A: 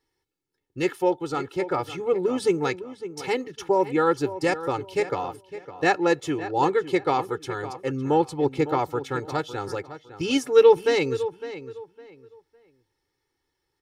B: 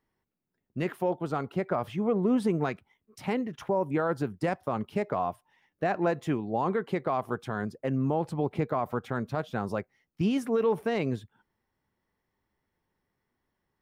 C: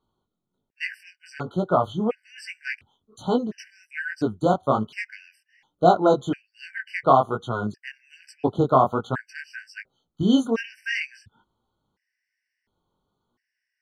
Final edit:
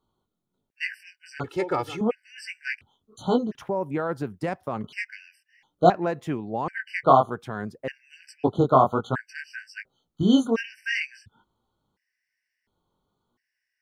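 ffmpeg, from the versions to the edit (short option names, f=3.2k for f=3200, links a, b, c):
-filter_complex "[1:a]asplit=3[a][b][c];[2:a]asplit=5[d][e][f][g][h];[d]atrim=end=1.442[i];[0:a]atrim=start=1.438:end=2.012[j];[e]atrim=start=2.008:end=3.552[k];[a]atrim=start=3.548:end=4.842[l];[f]atrim=start=4.838:end=5.902[m];[b]atrim=start=5.898:end=6.682[n];[g]atrim=start=6.678:end=7.302[o];[c]atrim=start=7.298:end=7.882[p];[h]atrim=start=7.878[q];[i][j]acrossfade=d=0.004:c1=hsin:c2=hsin[r];[r][k]acrossfade=d=0.004:c1=hsin:c2=hsin[s];[s][l]acrossfade=d=0.004:c1=hsin:c2=hsin[t];[t][m]acrossfade=d=0.004:c1=hsin:c2=hsin[u];[u][n]acrossfade=d=0.004:c1=hsin:c2=hsin[v];[v][o]acrossfade=d=0.004:c1=hsin:c2=hsin[w];[w][p]acrossfade=d=0.004:c1=hsin:c2=hsin[x];[x][q]acrossfade=d=0.004:c1=hsin:c2=hsin"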